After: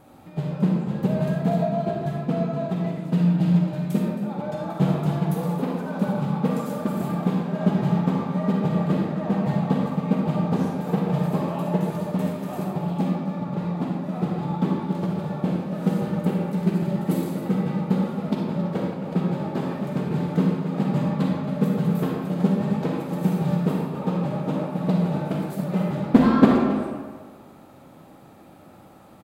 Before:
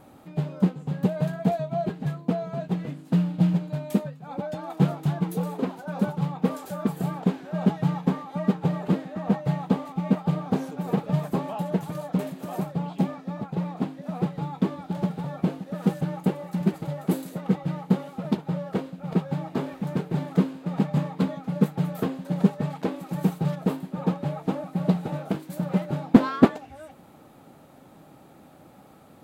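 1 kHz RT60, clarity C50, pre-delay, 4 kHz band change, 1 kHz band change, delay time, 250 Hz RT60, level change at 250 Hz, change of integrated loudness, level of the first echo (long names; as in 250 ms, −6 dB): 1.5 s, −1.0 dB, 37 ms, +2.0 dB, +3.0 dB, 270 ms, 1.4 s, +3.0 dB, +3.0 dB, −13.0 dB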